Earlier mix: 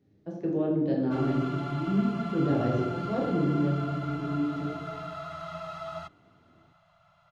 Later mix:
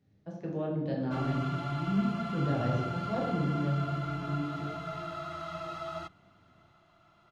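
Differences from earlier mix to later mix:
background: remove Chebyshev band-stop 180–550 Hz, order 4; master: add bell 350 Hz -11 dB 0.89 oct

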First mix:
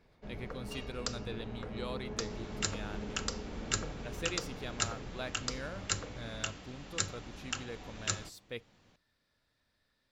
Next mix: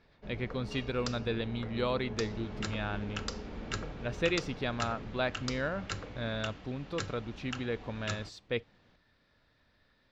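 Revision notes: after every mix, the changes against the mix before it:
speech +10.0 dB; first sound: add high shelf 5300 Hz +12 dB; master: add air absorption 160 m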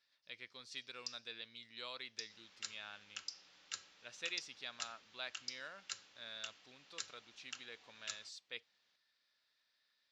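first sound: add band-pass 5200 Hz, Q 4.5; master: add band-pass 6700 Hz, Q 0.93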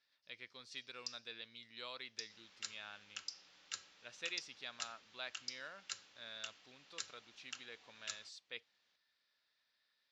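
speech: add high shelf 6000 Hz -5.5 dB

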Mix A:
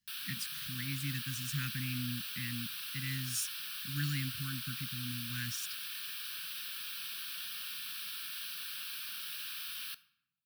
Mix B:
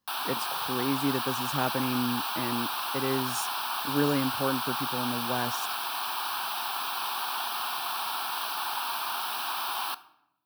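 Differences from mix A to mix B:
background +6.0 dB; master: remove elliptic band-stop 190–1800 Hz, stop band 70 dB

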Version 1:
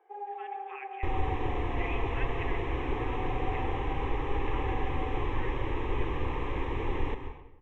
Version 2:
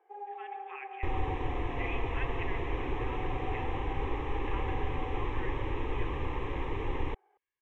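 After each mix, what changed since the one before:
first sound -3.0 dB; second sound: send off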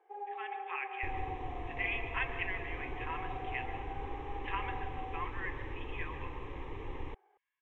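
speech +6.0 dB; second sound -8.5 dB

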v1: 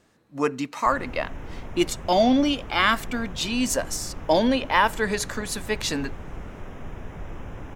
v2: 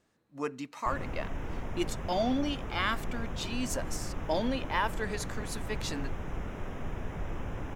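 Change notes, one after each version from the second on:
speech -10.5 dB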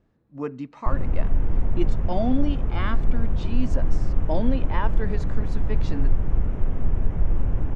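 speech: add LPF 5900 Hz 12 dB/oct; master: add tilt -3.5 dB/oct

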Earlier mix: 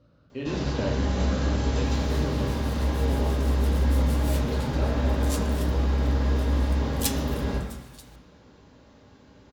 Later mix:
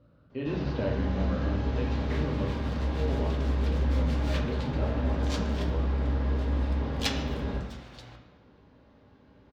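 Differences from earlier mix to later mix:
first sound -4.0 dB; second sound +8.5 dB; master: add air absorption 220 m

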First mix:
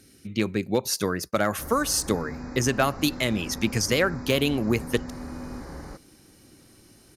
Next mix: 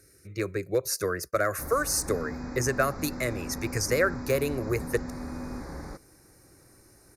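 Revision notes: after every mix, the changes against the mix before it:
speech: add fixed phaser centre 860 Hz, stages 6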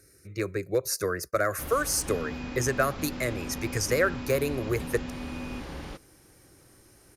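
background: remove Butterworth band-stop 3000 Hz, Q 1.1

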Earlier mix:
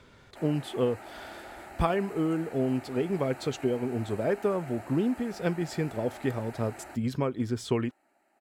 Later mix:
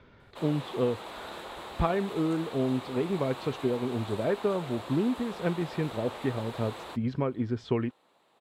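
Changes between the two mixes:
speech: add air absorption 220 m; background: remove fixed phaser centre 710 Hz, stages 8

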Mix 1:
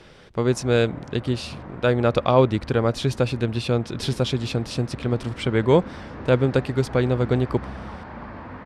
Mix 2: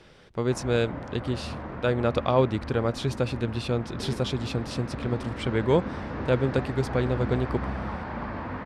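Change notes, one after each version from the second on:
speech -5.0 dB; background +3.5 dB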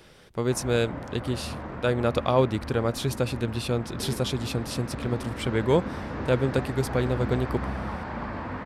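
master: remove air absorption 69 m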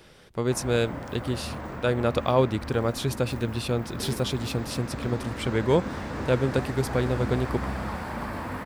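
background: remove air absorption 160 m

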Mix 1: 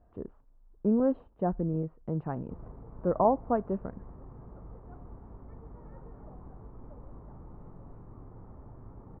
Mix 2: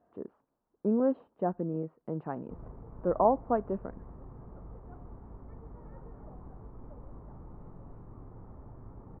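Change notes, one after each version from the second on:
speech: add HPF 210 Hz 12 dB/oct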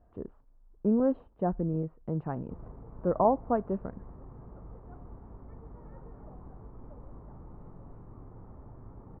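speech: remove HPF 210 Hz 12 dB/oct

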